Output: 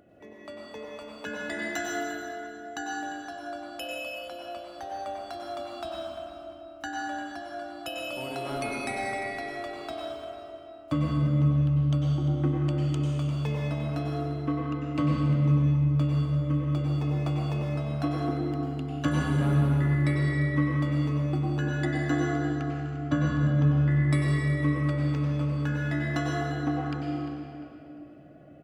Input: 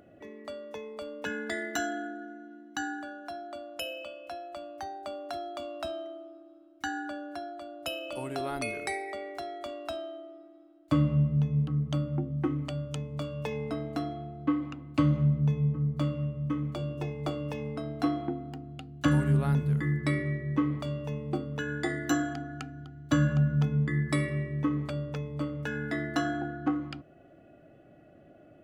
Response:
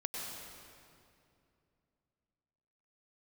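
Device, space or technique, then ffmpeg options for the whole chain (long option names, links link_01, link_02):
stairwell: -filter_complex "[0:a]asettb=1/sr,asplit=3[link_01][link_02][link_03];[link_01]atrim=end=21.854[link_04];[link_02]atrim=start=21.85:end=23.91,asetpts=PTS-STARTPTS,afade=type=in:duration=0.004:curve=qsin,afade=type=out:start_time=2.056:duration=0.004:curve=qsin,aemphasis=mode=reproduction:type=75fm[link_05];[link_03]atrim=start=23.906[link_06];[link_04][link_05]acrossfade=duration=0.004:curve1=hsin:curve2=qsin[link_07];[link_07][link_06]acrossfade=duration=0.004:curve1=qsin:curve2=hsin,asplit=2[link_08][link_09];[link_09]adelay=348,lowpass=frequency=4300:poles=1,volume=-11dB,asplit=2[link_10][link_11];[link_11]adelay=348,lowpass=frequency=4300:poles=1,volume=0.36,asplit=2[link_12][link_13];[link_13]adelay=348,lowpass=frequency=4300:poles=1,volume=0.36,asplit=2[link_14][link_15];[link_15]adelay=348,lowpass=frequency=4300:poles=1,volume=0.36[link_16];[link_08][link_10][link_12][link_14][link_16]amix=inputs=5:normalize=0[link_17];[1:a]atrim=start_sample=2205[link_18];[link_17][link_18]afir=irnorm=-1:irlink=0"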